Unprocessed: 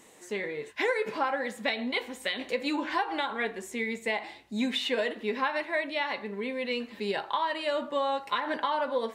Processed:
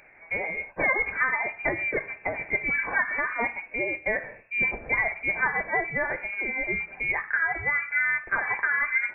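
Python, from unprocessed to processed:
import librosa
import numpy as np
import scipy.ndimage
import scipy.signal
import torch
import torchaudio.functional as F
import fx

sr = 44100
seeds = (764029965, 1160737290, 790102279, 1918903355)

y = fx.freq_invert(x, sr, carrier_hz=2600)
y = y * 10.0 ** (3.5 / 20.0)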